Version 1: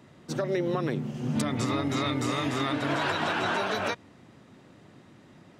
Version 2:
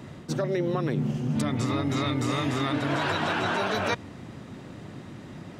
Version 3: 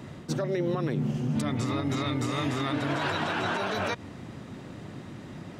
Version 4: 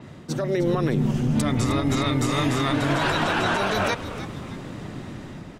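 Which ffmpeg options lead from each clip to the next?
-af "lowshelf=f=170:g=7,areverse,acompressor=threshold=-33dB:ratio=6,areverse,volume=9dB"
-af "alimiter=limit=-19.5dB:level=0:latency=1:release=95"
-filter_complex "[0:a]dynaudnorm=f=170:g=5:m=6dB,asplit=5[a][b][c][d][e];[b]adelay=309,afreqshift=-140,volume=-12.5dB[f];[c]adelay=618,afreqshift=-280,volume=-19.4dB[g];[d]adelay=927,afreqshift=-420,volume=-26.4dB[h];[e]adelay=1236,afreqshift=-560,volume=-33.3dB[i];[a][f][g][h][i]amix=inputs=5:normalize=0,adynamicequalizer=threshold=0.00501:dfrequency=6900:dqfactor=0.7:tfrequency=6900:tqfactor=0.7:attack=5:release=100:ratio=0.375:range=3:mode=boostabove:tftype=highshelf"

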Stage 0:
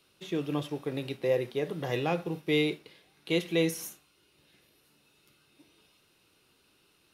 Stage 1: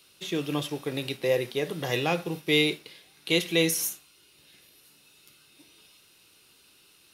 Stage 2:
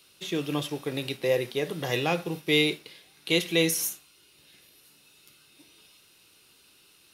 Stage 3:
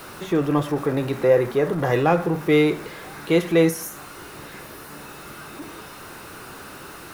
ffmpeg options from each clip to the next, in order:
-af "highshelf=f=2.3k:g=10.5,volume=1.5dB"
-af anull
-af "aeval=exprs='val(0)+0.5*0.02*sgn(val(0))':c=same,highshelf=f=2.1k:t=q:w=1.5:g=-12.5,volume=7dB"

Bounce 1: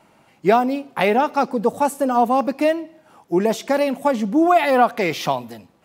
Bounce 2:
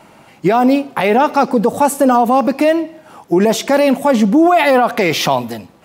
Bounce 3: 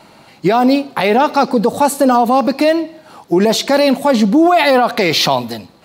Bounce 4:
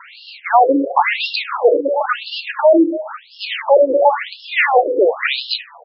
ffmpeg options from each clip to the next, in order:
-af "alimiter=level_in=14dB:limit=-1dB:release=50:level=0:latency=1,volume=-3dB"
-af "equalizer=f=4.2k:t=o:w=0.36:g=11.5"
-filter_complex "[0:a]asplit=2[a][b];[b]adelay=72,lowpass=f=3k:p=1,volume=-13dB,asplit=2[c][d];[d]adelay=72,lowpass=f=3k:p=1,volume=0.5,asplit=2[e][f];[f]adelay=72,lowpass=f=3k:p=1,volume=0.5,asplit=2[g][h];[h]adelay=72,lowpass=f=3k:p=1,volume=0.5,asplit=2[i][j];[j]adelay=72,lowpass=f=3k:p=1,volume=0.5[k];[a][c][e][g][i][k]amix=inputs=6:normalize=0,apsyclip=16.5dB,afftfilt=real='re*between(b*sr/1024,380*pow(3900/380,0.5+0.5*sin(2*PI*0.96*pts/sr))/1.41,380*pow(3900/380,0.5+0.5*sin(2*PI*0.96*pts/sr))*1.41)':imag='im*between(b*sr/1024,380*pow(3900/380,0.5+0.5*sin(2*PI*0.96*pts/sr))/1.41,380*pow(3900/380,0.5+0.5*sin(2*PI*0.96*pts/sr))*1.41)':win_size=1024:overlap=0.75,volume=-3.5dB"

